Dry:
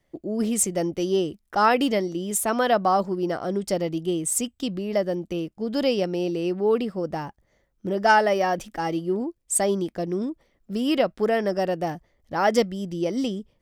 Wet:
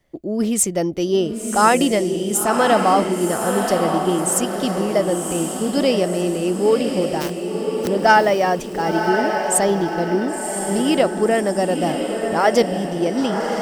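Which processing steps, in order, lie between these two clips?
0:07.20–0:07.86: compressing power law on the bin magnitudes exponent 0.33
feedback delay with all-pass diffusion 1,051 ms, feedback 47%, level −5 dB
level +4.5 dB

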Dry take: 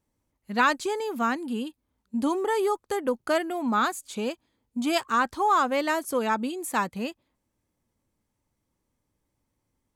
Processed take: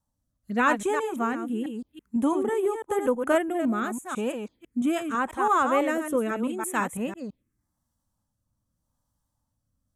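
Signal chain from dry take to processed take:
delay that plays each chunk backwards 166 ms, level −7 dB
phaser swept by the level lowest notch 390 Hz, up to 4,600 Hz, full sweep at −29.5 dBFS
rotating-speaker cabinet horn 0.85 Hz
level +3 dB

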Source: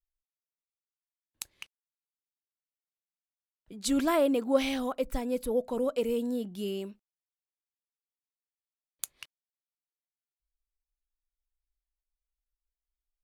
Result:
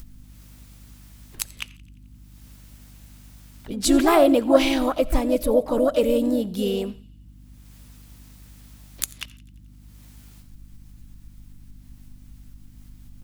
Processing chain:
low-shelf EQ 66 Hz +8.5 dB
in parallel at +2 dB: upward compression, threshold −29 dBFS
on the sum: mains hum 50 Hz, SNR 21 dB
pitch-shifted copies added +3 semitones −8 dB, +4 semitones −10 dB
delay with a high-pass on its return 87 ms, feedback 57%, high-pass 1,700 Hz, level −22 dB
on a send at −21 dB: convolution reverb, pre-delay 20 ms
on the sum: level +1 dB

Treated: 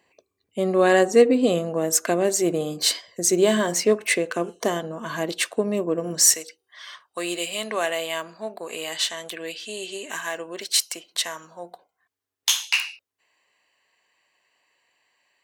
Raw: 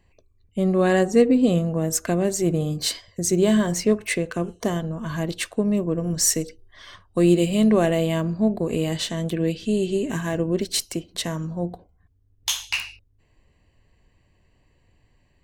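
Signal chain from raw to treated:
high-pass filter 360 Hz 12 dB per octave, from 0:06.34 950 Hz
level +4 dB

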